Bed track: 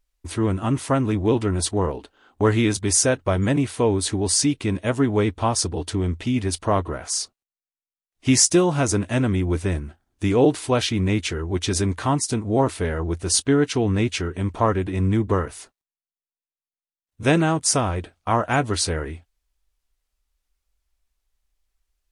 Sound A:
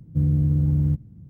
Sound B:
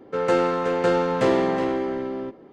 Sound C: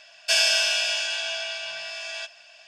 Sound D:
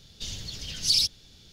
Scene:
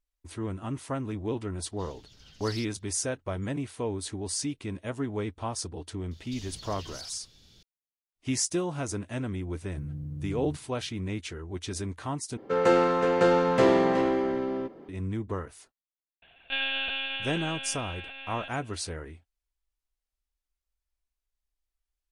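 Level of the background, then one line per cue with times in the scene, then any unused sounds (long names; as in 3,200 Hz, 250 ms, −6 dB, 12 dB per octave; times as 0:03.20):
bed track −12 dB
0:01.58: mix in D −16 dB + high-shelf EQ 4,700 Hz −6 dB
0:06.11: mix in D −4.5 dB + downward compressor, threshold −36 dBFS
0:09.61: mix in A −17 dB
0:12.37: overwrite with B −1 dB
0:16.22: mix in C −6.5 dB + one-pitch LPC vocoder at 8 kHz 270 Hz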